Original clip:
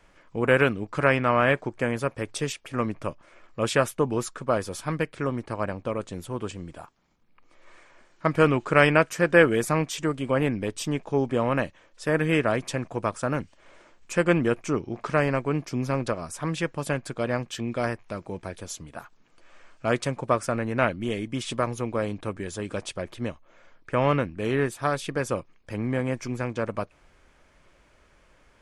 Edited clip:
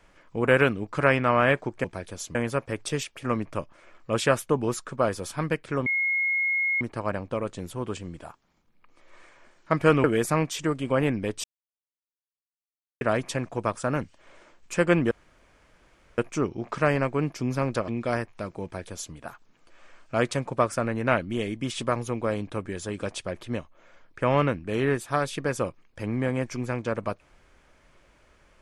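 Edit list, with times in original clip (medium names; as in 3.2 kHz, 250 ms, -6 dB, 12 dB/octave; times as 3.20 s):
5.35 s: add tone 2.16 kHz -22 dBFS 0.95 s
8.58–9.43 s: delete
10.83–12.40 s: mute
14.50 s: insert room tone 1.07 s
16.20–17.59 s: delete
18.34–18.85 s: copy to 1.84 s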